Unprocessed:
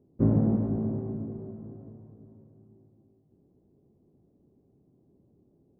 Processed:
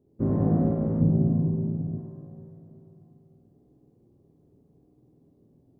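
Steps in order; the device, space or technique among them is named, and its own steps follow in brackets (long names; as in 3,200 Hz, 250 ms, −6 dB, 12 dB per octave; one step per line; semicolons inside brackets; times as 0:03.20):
tunnel (flutter between parallel walls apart 8.4 metres, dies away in 0.67 s; convolution reverb RT60 2.3 s, pre-delay 46 ms, DRR −3 dB)
0:01.01–0:01.98: tilt shelving filter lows +7.5 dB, about 650 Hz
level −3 dB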